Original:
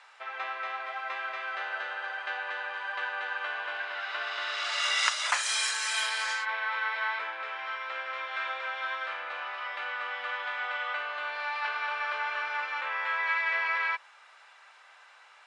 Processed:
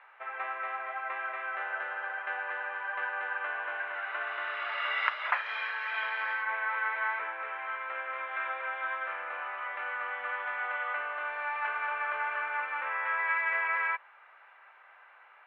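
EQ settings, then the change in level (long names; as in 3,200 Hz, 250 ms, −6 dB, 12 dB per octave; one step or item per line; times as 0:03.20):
inverse Chebyshev low-pass filter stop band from 7,300 Hz, stop band 60 dB
0.0 dB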